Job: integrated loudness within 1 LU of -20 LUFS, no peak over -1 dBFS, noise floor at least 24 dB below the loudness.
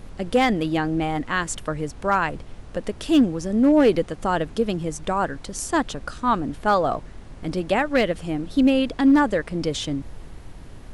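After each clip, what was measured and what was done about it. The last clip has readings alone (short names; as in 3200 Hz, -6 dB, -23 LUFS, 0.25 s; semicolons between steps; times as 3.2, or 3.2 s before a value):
clipped 0.6%; flat tops at -10.0 dBFS; noise floor -41 dBFS; noise floor target -47 dBFS; loudness -22.5 LUFS; peak -10.0 dBFS; loudness target -20.0 LUFS
-> clip repair -10 dBFS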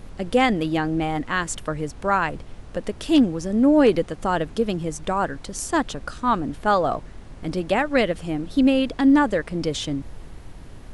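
clipped 0.0%; noise floor -41 dBFS; noise floor target -47 dBFS
-> noise print and reduce 6 dB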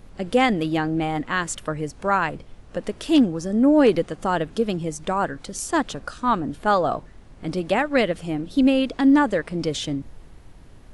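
noise floor -46 dBFS; noise floor target -47 dBFS
-> noise print and reduce 6 dB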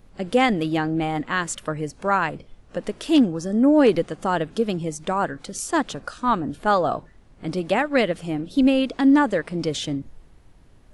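noise floor -51 dBFS; loudness -22.5 LUFS; peak -5.5 dBFS; loudness target -20.0 LUFS
-> gain +2.5 dB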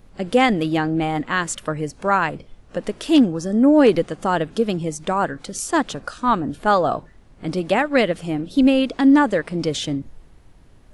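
loudness -20.0 LUFS; peak -3.0 dBFS; noise floor -49 dBFS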